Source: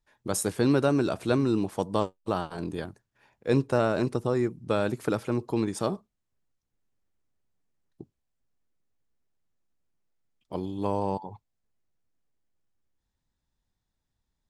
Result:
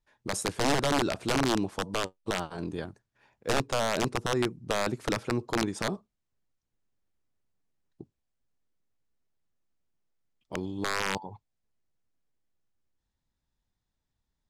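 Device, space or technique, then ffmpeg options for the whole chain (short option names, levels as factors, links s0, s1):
overflowing digital effects unit: -af "aeval=exprs='(mod(7.08*val(0)+1,2)-1)/7.08':c=same,lowpass=8500,volume=0.841"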